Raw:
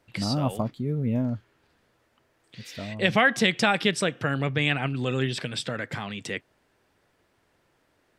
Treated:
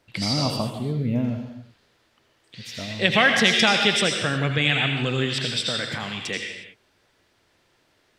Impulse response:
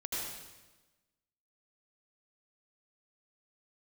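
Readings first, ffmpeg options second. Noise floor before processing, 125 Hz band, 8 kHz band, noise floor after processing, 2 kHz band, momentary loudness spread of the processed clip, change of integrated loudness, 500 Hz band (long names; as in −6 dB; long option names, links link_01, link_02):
−69 dBFS, +2.0 dB, +6.0 dB, −65 dBFS, +4.5 dB, 17 LU, +4.5 dB, +1.5 dB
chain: -filter_complex "[0:a]asplit=2[link_01][link_02];[link_02]equalizer=frequency=4200:width=0.51:gain=14.5[link_03];[1:a]atrim=start_sample=2205,afade=type=out:start_time=0.42:duration=0.01,atrim=end_sample=18963[link_04];[link_03][link_04]afir=irnorm=-1:irlink=0,volume=-8.5dB[link_05];[link_01][link_05]amix=inputs=2:normalize=0,volume=-1dB"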